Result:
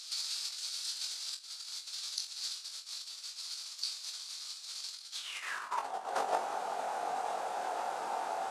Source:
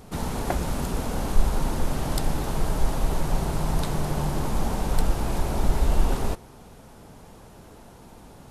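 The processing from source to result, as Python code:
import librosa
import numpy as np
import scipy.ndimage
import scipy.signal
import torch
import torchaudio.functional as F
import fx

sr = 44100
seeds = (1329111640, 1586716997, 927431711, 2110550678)

p1 = scipy.signal.sosfilt(scipy.signal.butter(4, 7700.0, 'lowpass', fs=sr, output='sos'), x)
p2 = fx.low_shelf(p1, sr, hz=140.0, db=-7.0)
p3 = fx.over_compress(p2, sr, threshold_db=-36.0, ratio=-1.0)
p4 = fx.filter_sweep_highpass(p3, sr, from_hz=3700.0, to_hz=590.0, start_s=5.11, end_s=5.9, q=4.2)
p5 = fx.formant_shift(p4, sr, semitones=3)
y = p5 + fx.room_flutter(p5, sr, wall_m=3.8, rt60_s=0.22, dry=0)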